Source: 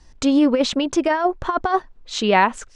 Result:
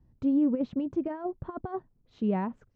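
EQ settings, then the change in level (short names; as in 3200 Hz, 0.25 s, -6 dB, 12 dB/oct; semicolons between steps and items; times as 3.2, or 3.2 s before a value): band-pass 140 Hz, Q 1.5; air absorption 67 m; 0.0 dB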